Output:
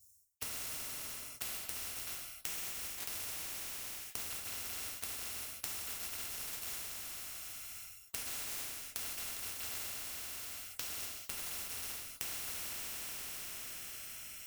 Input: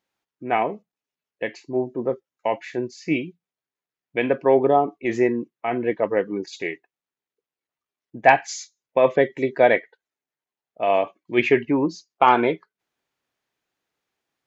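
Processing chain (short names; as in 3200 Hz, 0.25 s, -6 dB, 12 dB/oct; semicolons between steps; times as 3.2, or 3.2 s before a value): FFT order left unsorted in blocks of 256 samples; elliptic band-stop 110–6500 Hz, stop band 40 dB; sample leveller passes 5; flipped gate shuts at -14 dBFS, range -34 dB; two-slope reverb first 0.57 s, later 4.7 s, from -18 dB, DRR 0 dB; reverse; compressor 6:1, threshold -45 dBFS, peak gain reduction 22.5 dB; reverse; bell 2400 Hz +11.5 dB 0.89 oct; spectral compressor 4:1; gain +8 dB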